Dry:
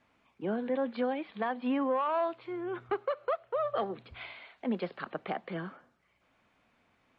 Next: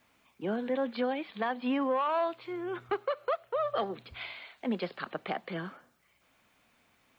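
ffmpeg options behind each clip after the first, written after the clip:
-af "aemphasis=mode=production:type=75kf"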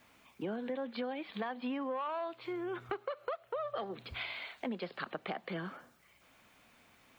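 -af "acompressor=threshold=-41dB:ratio=4,volume=4dB"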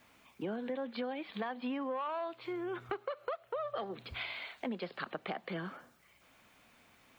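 -af anull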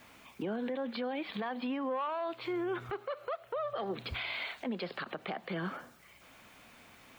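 -af "alimiter=level_in=11.5dB:limit=-24dB:level=0:latency=1:release=62,volume=-11.5dB,volume=7dB"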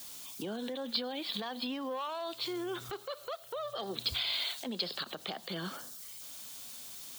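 -af "aexciter=amount=10:drive=4.2:freq=3.4k,volume=-3dB"

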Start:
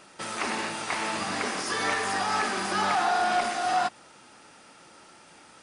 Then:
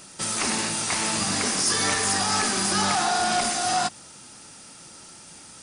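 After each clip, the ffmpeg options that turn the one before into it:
-af "bass=f=250:g=11,treble=f=4k:g=15"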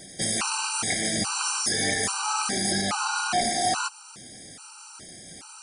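-af "alimiter=limit=-16.5dB:level=0:latency=1:release=370,afftfilt=real='re*gt(sin(2*PI*1.2*pts/sr)*(1-2*mod(floor(b*sr/1024/780),2)),0)':imag='im*gt(sin(2*PI*1.2*pts/sr)*(1-2*mod(floor(b*sr/1024/780),2)),0)':win_size=1024:overlap=0.75,volume=4dB"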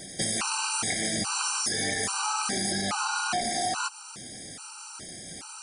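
-af "acompressor=threshold=-28dB:ratio=6,volume=2.5dB"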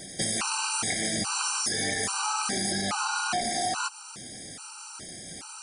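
-af anull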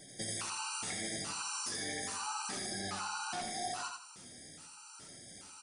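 -filter_complex "[0:a]flanger=delay=6.5:depth=7.4:regen=43:speed=0.79:shape=triangular,asplit=2[a][b];[b]aecho=0:1:84|168|252|336:0.631|0.196|0.0606|0.0188[c];[a][c]amix=inputs=2:normalize=0,volume=-8dB"

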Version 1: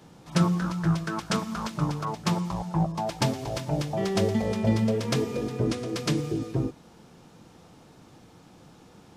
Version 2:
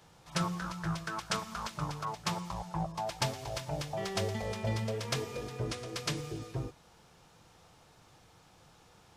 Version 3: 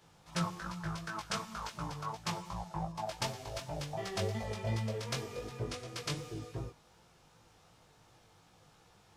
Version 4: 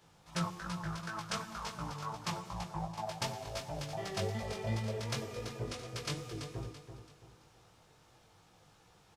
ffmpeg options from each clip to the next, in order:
-af "equalizer=f=250:t=o:w=1.6:g=-13.5,volume=-3dB"
-af "flanger=delay=17:depth=3.5:speed=2.7"
-af "aecho=1:1:334|668|1002|1336:0.355|0.131|0.0486|0.018,volume=-1dB"

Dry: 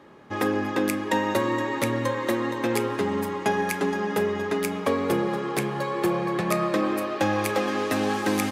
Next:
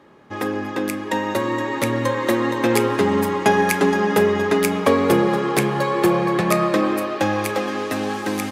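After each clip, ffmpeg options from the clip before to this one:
-af "dynaudnorm=f=450:g=9:m=11.5dB"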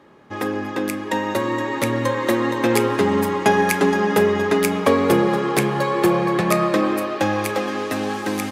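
-af anull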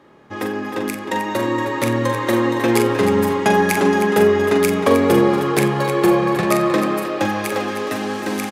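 -af "aecho=1:1:43|89|311:0.473|0.1|0.316"

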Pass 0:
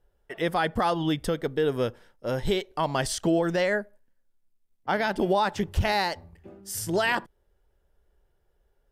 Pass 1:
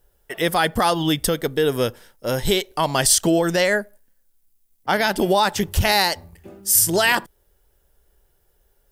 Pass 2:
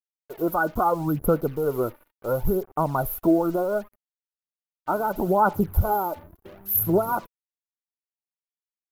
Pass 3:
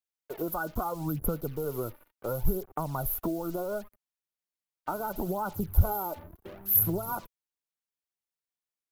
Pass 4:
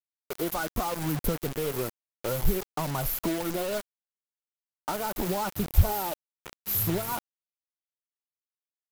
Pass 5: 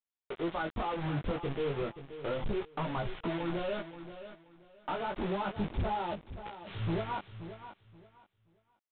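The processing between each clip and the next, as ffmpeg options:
-af "aemphasis=mode=production:type=75kf,volume=5dB"
-af "afftfilt=real='re*(1-between(b*sr/4096,1500,11000))':imag='im*(1-between(b*sr/4096,1500,11000))':win_size=4096:overlap=0.75,acrusher=bits=6:mix=0:aa=0.5,aphaser=in_gain=1:out_gain=1:delay=3.4:decay=0.49:speed=0.72:type=sinusoidal,volume=-4dB"
-filter_complex "[0:a]acrossover=split=120|3000[a][b][c];[b]acompressor=threshold=-31dB:ratio=6[d];[a][d][c]amix=inputs=3:normalize=0"
-filter_complex "[0:a]acrossover=split=670[a][b];[b]asoftclip=type=tanh:threshold=-26.5dB[c];[a][c]amix=inputs=2:normalize=0,acrusher=bits=5:mix=0:aa=0.000001,volume=2dB"
-af "flanger=delay=17:depth=4.8:speed=0.31,aresample=8000,asoftclip=type=hard:threshold=-28dB,aresample=44100,aecho=1:1:528|1056|1584:0.251|0.0578|0.0133"

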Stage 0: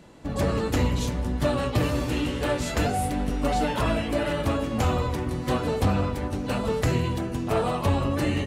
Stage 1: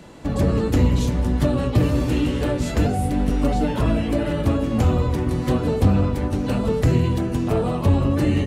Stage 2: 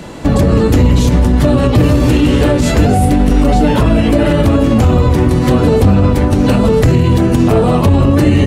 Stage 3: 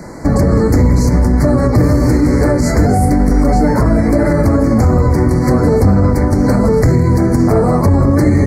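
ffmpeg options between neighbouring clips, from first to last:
-filter_complex "[0:a]acrossover=split=450[a][b];[b]acompressor=threshold=-41dB:ratio=2.5[c];[a][c]amix=inputs=2:normalize=0,volume=7dB"
-af "alimiter=level_in=15dB:limit=-1dB:release=50:level=0:latency=1,volume=-1dB"
-af "asuperstop=centerf=3100:order=12:qfactor=1.5,volume=-1dB"

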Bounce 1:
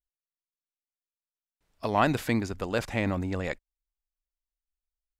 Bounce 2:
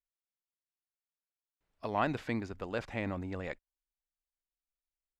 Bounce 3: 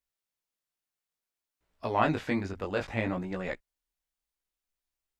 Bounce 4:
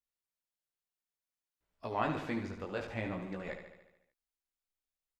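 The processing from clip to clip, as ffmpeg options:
-filter_complex "[0:a]acrossover=split=7700[a][b];[b]acompressor=threshold=-60dB:ratio=4:attack=1:release=60[c];[a][c]amix=inputs=2:normalize=0,bass=f=250:g=-2,treble=f=4k:g=-7,volume=-7dB"
-af "flanger=delay=16:depth=5.1:speed=0.6,volume=8dB"
-af "aecho=1:1:73|146|219|292|365|438|511|584:0.376|0.226|0.135|0.0812|0.0487|0.0292|0.0175|0.0105,volume=-7.5dB"

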